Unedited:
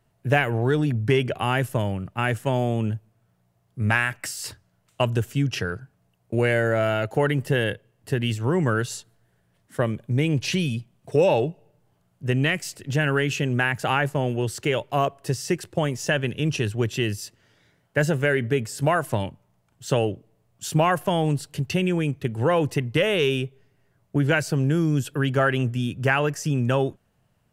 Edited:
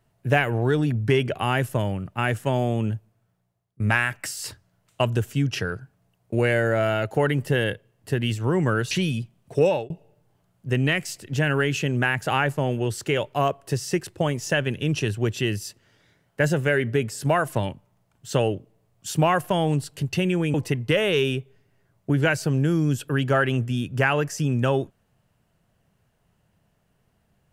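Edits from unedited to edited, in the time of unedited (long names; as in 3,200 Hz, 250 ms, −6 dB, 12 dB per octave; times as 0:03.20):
0:02.95–0:03.80: fade out, to −22.5 dB
0:08.91–0:10.48: remove
0:11.21–0:11.47: fade out
0:22.11–0:22.60: remove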